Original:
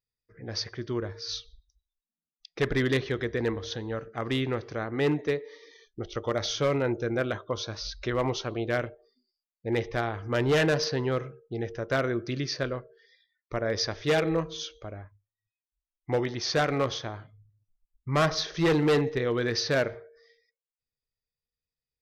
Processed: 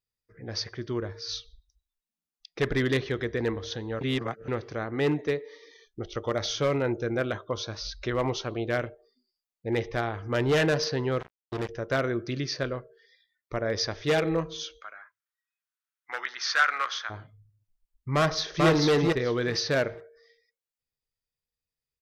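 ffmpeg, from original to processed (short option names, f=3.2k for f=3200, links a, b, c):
-filter_complex "[0:a]asettb=1/sr,asplit=3[a][b][c];[a]atrim=end=11.204[d];[b]atrim=start=11.2:end=11.69,asetpts=PTS-STARTPTS,afade=t=in:d=0.004:c=qsin,afade=t=out:st=0.486:d=0.004:c=qsin,acrusher=bits=4:mix=0:aa=0.5[e];[c]atrim=start=11.686[f];[d][e]acrossfade=d=0.004:c1=hsin:c2=qsin[g];[g][f]acrossfade=d=0.004:c1=qsin:c2=hsin,asplit=3[h][i][j];[h]afade=t=out:st=14.8:d=0.02[k];[i]highpass=f=1.4k:t=q:w=3.4,afade=t=in:st=14.8:d=0.02,afade=t=out:st=17.09:d=0.02[l];[j]afade=t=in:st=17.09:d=0.02[m];[k][l][m]amix=inputs=3:normalize=0,asplit=2[n][o];[o]afade=t=in:st=18.15:d=0.01,afade=t=out:st=18.68:d=0.01,aecho=0:1:440|880|1320:0.891251|0.133688|0.0200531[p];[n][p]amix=inputs=2:normalize=0,asplit=3[q][r][s];[q]atrim=end=4.012[t];[r]atrim=start=4.008:end=4.482,asetpts=PTS-STARTPTS,areverse[u];[s]atrim=start=4.478[v];[t][u]acrossfade=d=0.004:c1=hsin:c2=hsin[w];[w][v]acrossfade=d=0.004:c1=hsin:c2=hsin"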